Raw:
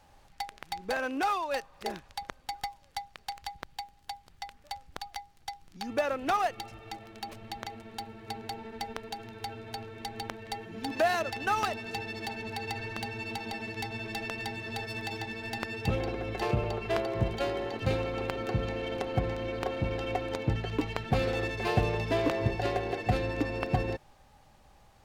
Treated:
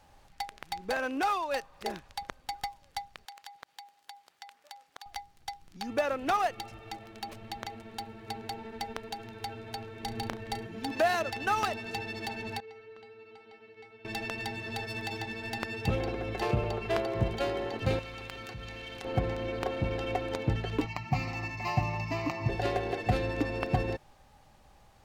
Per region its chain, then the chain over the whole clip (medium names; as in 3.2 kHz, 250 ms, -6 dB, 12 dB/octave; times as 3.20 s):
3.25–5.06 s: high-pass 510 Hz + compression, threshold -42 dBFS
10.03–10.67 s: bass shelf 380 Hz +6.5 dB + flutter echo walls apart 6 m, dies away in 0.22 s
12.60–14.05 s: low-pass 3.5 kHz + bass shelf 150 Hz -9.5 dB + feedback comb 440 Hz, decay 0.31 s, harmonics odd, mix 90%
17.99–19.05 s: amplifier tone stack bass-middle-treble 5-5-5 + level flattener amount 70%
20.86–22.49 s: high-pass 68 Hz + static phaser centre 2.3 kHz, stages 8 + comb 6.7 ms, depth 35%
whole clip: none